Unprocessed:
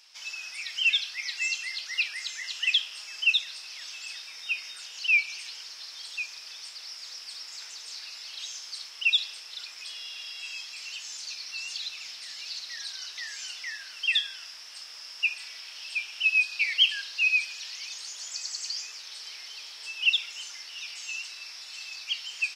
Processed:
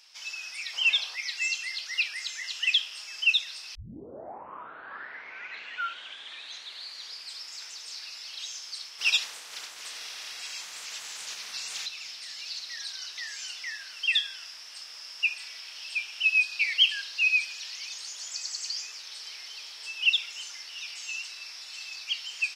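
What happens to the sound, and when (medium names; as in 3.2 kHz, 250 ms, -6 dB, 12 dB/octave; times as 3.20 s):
0.73–1.16 s: high-order bell 710 Hz +12 dB
3.75 s: tape start 3.75 s
8.98–11.85 s: spectral peaks clipped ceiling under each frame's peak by 20 dB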